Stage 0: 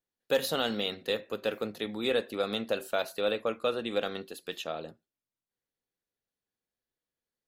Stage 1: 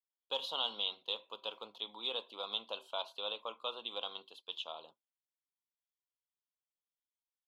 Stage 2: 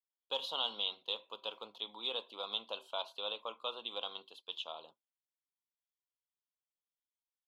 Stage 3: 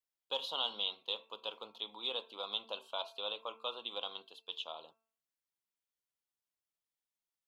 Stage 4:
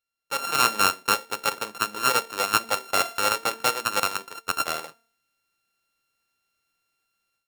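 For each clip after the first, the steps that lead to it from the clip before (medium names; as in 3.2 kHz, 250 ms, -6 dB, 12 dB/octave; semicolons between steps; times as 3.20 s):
gate -46 dBFS, range -9 dB; two resonant band-passes 1.8 kHz, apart 1.7 oct; trim +4 dB
no audible change
de-hum 223.8 Hz, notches 12
sorted samples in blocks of 32 samples; level rider gain up to 11.5 dB; trim +5 dB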